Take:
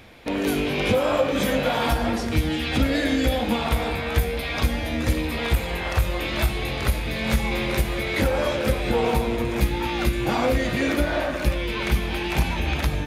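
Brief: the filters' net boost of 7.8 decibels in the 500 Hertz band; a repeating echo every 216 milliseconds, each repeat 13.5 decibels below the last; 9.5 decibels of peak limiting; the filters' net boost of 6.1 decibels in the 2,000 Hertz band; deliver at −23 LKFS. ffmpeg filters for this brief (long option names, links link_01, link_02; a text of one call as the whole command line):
ffmpeg -i in.wav -af "equalizer=frequency=500:width_type=o:gain=8.5,equalizer=frequency=2000:width_type=o:gain=7,alimiter=limit=-11.5dB:level=0:latency=1,aecho=1:1:216|432:0.211|0.0444,volume=-2dB" out.wav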